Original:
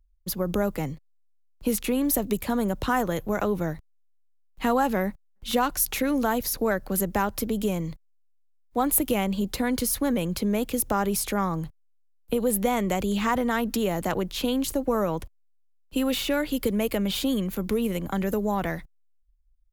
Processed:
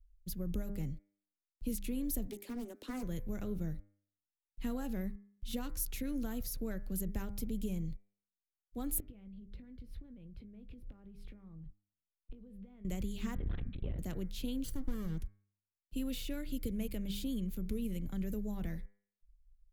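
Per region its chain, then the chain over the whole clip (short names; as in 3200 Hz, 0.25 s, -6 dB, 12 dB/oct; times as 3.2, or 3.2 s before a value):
2.27–3.03 steep high-pass 230 Hz 96 dB/oct + Doppler distortion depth 0.41 ms
9–12.85 air absorption 420 m + compressor 16:1, threshold -38 dBFS + doubler 20 ms -11.5 dB
13.35–13.99 LPC vocoder at 8 kHz whisper + core saturation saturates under 380 Hz
14.64–15.18 minimum comb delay 0.66 ms + notch 2600 Hz, Q 6.2
whole clip: passive tone stack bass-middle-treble 10-0-1; de-hum 100.9 Hz, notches 24; gain +6.5 dB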